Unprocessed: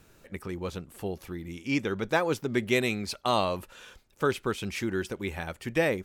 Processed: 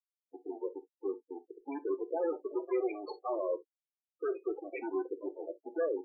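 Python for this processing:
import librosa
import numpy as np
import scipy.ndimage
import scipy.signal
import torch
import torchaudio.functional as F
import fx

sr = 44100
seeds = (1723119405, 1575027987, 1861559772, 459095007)

y = fx.schmitt(x, sr, flips_db=-30.5)
y = scipy.signal.sosfilt(scipy.signal.ellip(3, 1.0, 40, [350.0, 7700.0], 'bandpass', fs=sr, output='sos'), y)
y = fx.spec_topn(y, sr, count=8)
y = fx.rev_gated(y, sr, seeds[0], gate_ms=90, shape='falling', drr_db=10.0)
y = F.gain(torch.from_numpy(y), 2.0).numpy()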